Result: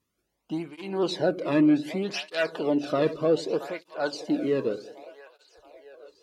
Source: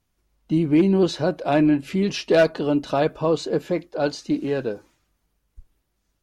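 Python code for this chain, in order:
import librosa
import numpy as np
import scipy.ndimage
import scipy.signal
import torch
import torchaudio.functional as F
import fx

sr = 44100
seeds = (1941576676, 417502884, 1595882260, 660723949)

p1 = fx.dynamic_eq(x, sr, hz=6400.0, q=4.8, threshold_db=-55.0, ratio=4.0, max_db=-5)
p2 = p1 + fx.echo_split(p1, sr, split_hz=450.0, low_ms=85, high_ms=674, feedback_pct=52, wet_db=-15.0, dry=0)
p3 = 10.0 ** (-10.5 / 20.0) * np.tanh(p2 / 10.0 ** (-10.5 / 20.0))
y = fx.flanger_cancel(p3, sr, hz=0.65, depth_ms=1.4)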